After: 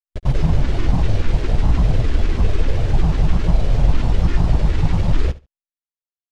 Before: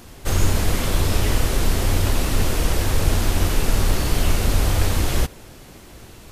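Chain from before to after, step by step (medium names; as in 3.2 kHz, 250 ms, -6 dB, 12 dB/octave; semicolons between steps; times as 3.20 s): peaking EQ 1.1 kHz -13.5 dB 1 oct; hum notches 50/100/150/200/250 Hz; comb 1.9 ms, depth 46%; in parallel at +1.5 dB: compression 6:1, threshold -23 dBFS, peak gain reduction 14 dB; on the sum: bit crusher 4-bit; granulator, spray 100 ms, pitch spread up and down by 12 st; tape spacing loss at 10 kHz 29 dB; on a send: feedback delay 71 ms, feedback 16%, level -19 dB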